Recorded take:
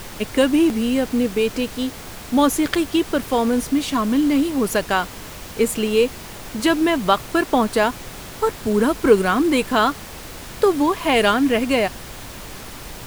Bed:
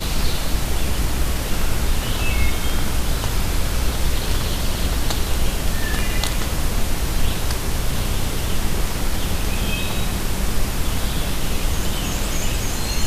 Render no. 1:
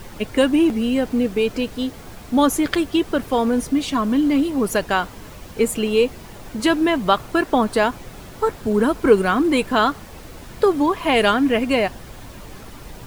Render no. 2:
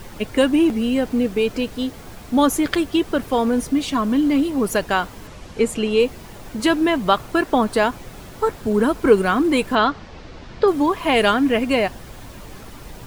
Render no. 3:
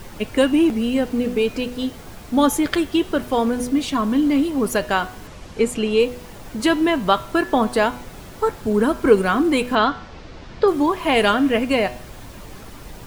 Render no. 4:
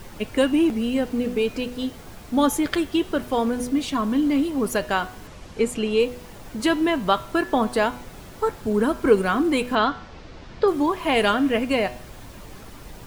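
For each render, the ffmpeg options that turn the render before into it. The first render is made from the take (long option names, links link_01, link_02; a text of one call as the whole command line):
ffmpeg -i in.wav -af "afftdn=noise_reduction=8:noise_floor=-36" out.wav
ffmpeg -i in.wav -filter_complex "[0:a]asettb=1/sr,asplit=3[link_01][link_02][link_03];[link_01]atrim=end=5.274[link_04];[link_02]atrim=start=5.27:end=6,asetpts=PTS-STARTPTS,afade=type=in:duration=0.004:curve=qsin,afade=type=out:start_time=0.726:duration=0.004:curve=qsin,lowpass=8100[link_05];[link_03]atrim=start=5.996[link_06];[link_04][link_05]acrossfade=duration=0.004:curve1=hsin:curve2=qsin[link_07];[link_07][link_06]acrossfade=duration=0.004:curve1=qsin:curve2=hsin,asettb=1/sr,asplit=3[link_08][link_09][link_10];[link_08]atrim=end=9.754[link_11];[link_09]atrim=start=9.75:end=10.68,asetpts=PTS-STARTPTS,afade=type=in:duration=0.004:curve=qsin,afade=type=out:start_time=0.926:duration=0.004:curve=qsin,lowpass=frequency=5400:width=0.5412,lowpass=frequency=5400:width=1.3066[link_12];[link_10]atrim=start=10.676[link_13];[link_11][link_12]acrossfade=duration=0.004:curve1=hsin:curve2=qsin[link_14];[link_14][link_13]acrossfade=duration=0.004:curve1=qsin:curve2=hsin" out.wav
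ffmpeg -i in.wav -af "bandreject=frequency=123:width_type=h:width=4,bandreject=frequency=246:width_type=h:width=4,bandreject=frequency=369:width_type=h:width=4,bandreject=frequency=492:width_type=h:width=4,bandreject=frequency=615:width_type=h:width=4,bandreject=frequency=738:width_type=h:width=4,bandreject=frequency=861:width_type=h:width=4,bandreject=frequency=984:width_type=h:width=4,bandreject=frequency=1107:width_type=h:width=4,bandreject=frequency=1230:width_type=h:width=4,bandreject=frequency=1353:width_type=h:width=4,bandreject=frequency=1476:width_type=h:width=4,bandreject=frequency=1599:width_type=h:width=4,bandreject=frequency=1722:width_type=h:width=4,bandreject=frequency=1845:width_type=h:width=4,bandreject=frequency=1968:width_type=h:width=4,bandreject=frequency=2091:width_type=h:width=4,bandreject=frequency=2214:width_type=h:width=4,bandreject=frequency=2337:width_type=h:width=4,bandreject=frequency=2460:width_type=h:width=4,bandreject=frequency=2583:width_type=h:width=4,bandreject=frequency=2706:width_type=h:width=4,bandreject=frequency=2829:width_type=h:width=4,bandreject=frequency=2952:width_type=h:width=4,bandreject=frequency=3075:width_type=h:width=4,bandreject=frequency=3198:width_type=h:width=4,bandreject=frequency=3321:width_type=h:width=4,bandreject=frequency=3444:width_type=h:width=4,bandreject=frequency=3567:width_type=h:width=4,bandreject=frequency=3690:width_type=h:width=4,bandreject=frequency=3813:width_type=h:width=4,bandreject=frequency=3936:width_type=h:width=4,bandreject=frequency=4059:width_type=h:width=4,bandreject=frequency=4182:width_type=h:width=4,bandreject=frequency=4305:width_type=h:width=4" out.wav
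ffmpeg -i in.wav -af "volume=-3dB" out.wav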